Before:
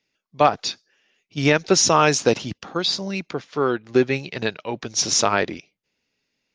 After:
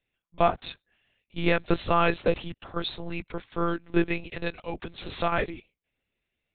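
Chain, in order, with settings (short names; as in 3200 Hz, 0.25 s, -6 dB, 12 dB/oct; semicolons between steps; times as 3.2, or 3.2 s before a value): monotone LPC vocoder at 8 kHz 170 Hz; gain -5.5 dB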